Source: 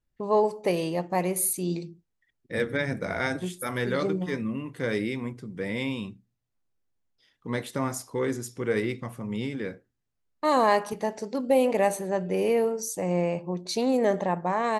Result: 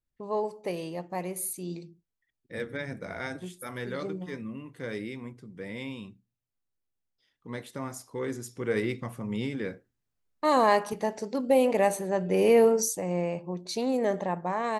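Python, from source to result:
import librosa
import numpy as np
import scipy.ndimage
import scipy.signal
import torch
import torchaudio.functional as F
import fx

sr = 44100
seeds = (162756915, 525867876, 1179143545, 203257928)

y = fx.gain(x, sr, db=fx.line((7.91, -7.5), (8.93, -0.5), (12.15, -0.5), (12.81, 7.0), (13.02, -3.5)))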